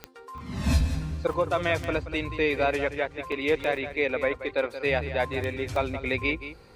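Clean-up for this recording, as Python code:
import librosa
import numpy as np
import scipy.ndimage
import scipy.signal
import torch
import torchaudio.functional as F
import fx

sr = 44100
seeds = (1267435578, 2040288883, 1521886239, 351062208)

y = fx.fix_declick_ar(x, sr, threshold=10.0)
y = fx.fix_interpolate(y, sr, at_s=(0.38, 1.33, 3.32, 3.77, 5.76), length_ms=2.5)
y = fx.fix_echo_inverse(y, sr, delay_ms=178, level_db=-12.0)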